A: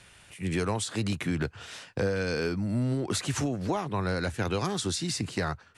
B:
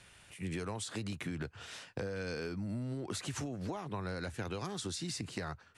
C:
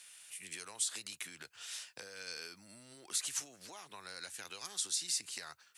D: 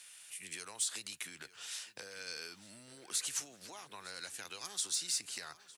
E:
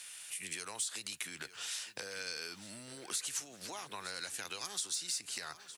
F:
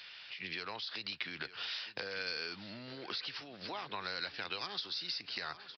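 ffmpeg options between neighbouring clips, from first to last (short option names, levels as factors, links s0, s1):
-af "acompressor=threshold=0.0282:ratio=6,volume=0.596"
-af "aderivative,volume=2.66"
-filter_complex "[0:a]asoftclip=type=tanh:threshold=0.0668,asplit=2[s0][s1];[s1]adelay=906,lowpass=f=4900:p=1,volume=0.141,asplit=2[s2][s3];[s3]adelay=906,lowpass=f=4900:p=1,volume=0.54,asplit=2[s4][s5];[s5]adelay=906,lowpass=f=4900:p=1,volume=0.54,asplit=2[s6][s7];[s7]adelay=906,lowpass=f=4900:p=1,volume=0.54,asplit=2[s8][s9];[s9]adelay=906,lowpass=f=4900:p=1,volume=0.54[s10];[s0][s2][s4][s6][s8][s10]amix=inputs=6:normalize=0,volume=1.12"
-af "acompressor=threshold=0.00631:ratio=2.5,volume=2"
-af "aresample=11025,aresample=44100,volume=1.5"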